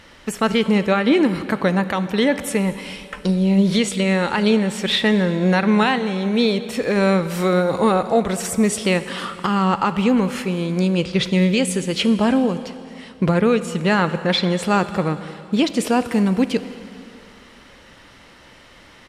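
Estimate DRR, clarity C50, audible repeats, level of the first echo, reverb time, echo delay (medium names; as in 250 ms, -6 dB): 11.5 dB, 12.5 dB, 1, -22.5 dB, 2.6 s, 220 ms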